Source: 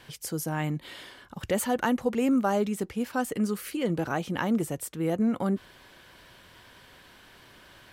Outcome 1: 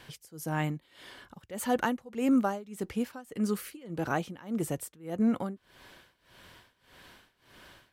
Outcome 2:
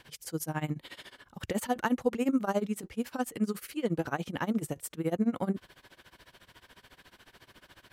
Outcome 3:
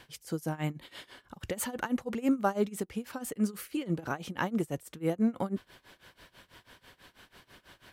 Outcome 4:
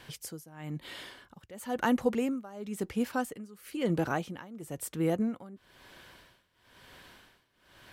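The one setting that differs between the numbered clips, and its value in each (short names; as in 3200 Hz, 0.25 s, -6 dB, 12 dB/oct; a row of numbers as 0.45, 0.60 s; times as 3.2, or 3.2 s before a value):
tremolo, rate: 1.7, 14, 6.1, 1 Hz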